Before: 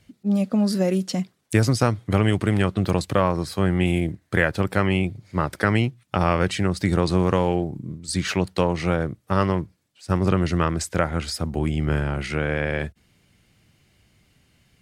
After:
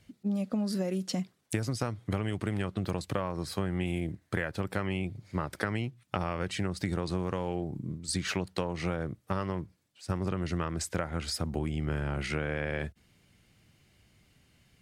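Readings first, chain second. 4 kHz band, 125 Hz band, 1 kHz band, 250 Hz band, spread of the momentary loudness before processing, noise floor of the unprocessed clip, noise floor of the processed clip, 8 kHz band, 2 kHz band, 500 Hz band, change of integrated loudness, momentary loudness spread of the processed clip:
-7.5 dB, -10.5 dB, -11.5 dB, -10.5 dB, 6 LU, -65 dBFS, -69 dBFS, -6.5 dB, -10.5 dB, -11.0 dB, -10.5 dB, 4 LU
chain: compressor, threshold -24 dBFS, peak gain reduction 11.5 dB; gain -3.5 dB

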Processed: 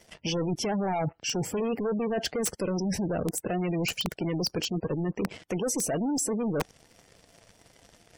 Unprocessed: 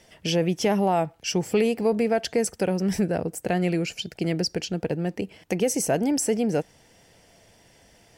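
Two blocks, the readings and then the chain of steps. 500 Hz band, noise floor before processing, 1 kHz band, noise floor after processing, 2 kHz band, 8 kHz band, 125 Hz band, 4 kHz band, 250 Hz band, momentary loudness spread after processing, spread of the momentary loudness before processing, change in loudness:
-6.0 dB, -57 dBFS, -5.5 dB, -62 dBFS, -4.5 dB, -1.5 dB, -3.5 dB, -1.5 dB, -4.5 dB, 4 LU, 7 LU, -4.5 dB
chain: bin magnitudes rounded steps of 15 dB; sample leveller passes 3; reverse; compressor 10:1, threshold -27 dBFS, peak gain reduction 12.5 dB; reverse; spectral gate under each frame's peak -25 dB strong; wrapped overs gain 21 dB

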